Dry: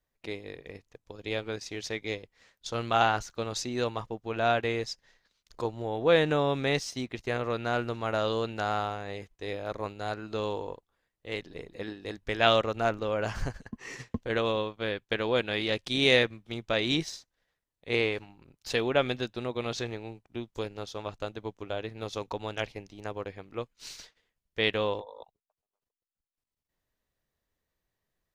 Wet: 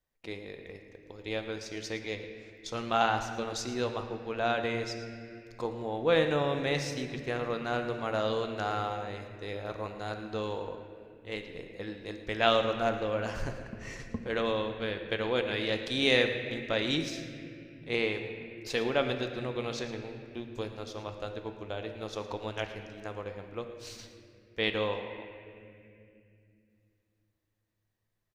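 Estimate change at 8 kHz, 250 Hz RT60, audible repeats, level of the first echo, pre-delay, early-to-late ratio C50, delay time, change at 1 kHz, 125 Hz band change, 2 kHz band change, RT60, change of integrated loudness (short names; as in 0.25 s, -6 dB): -2.5 dB, 3.9 s, 1, -16.5 dB, 4 ms, 7.0 dB, 0.112 s, -2.0 dB, -2.5 dB, -2.0 dB, 2.5 s, -2.0 dB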